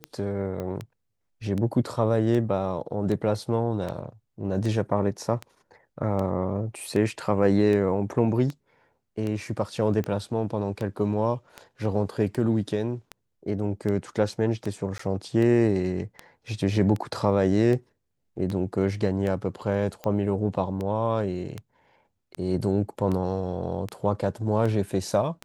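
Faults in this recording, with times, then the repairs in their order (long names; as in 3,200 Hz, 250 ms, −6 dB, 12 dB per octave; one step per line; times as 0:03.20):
scratch tick 78 rpm −19 dBFS
0:00.60: click −21 dBFS
0:14.98–0:14.99: drop-out 14 ms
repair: click removal
repair the gap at 0:14.98, 14 ms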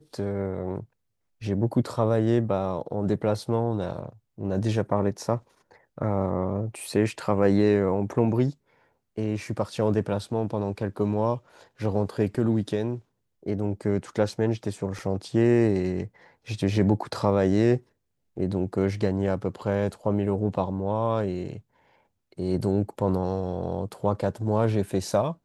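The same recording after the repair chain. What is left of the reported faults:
none of them is left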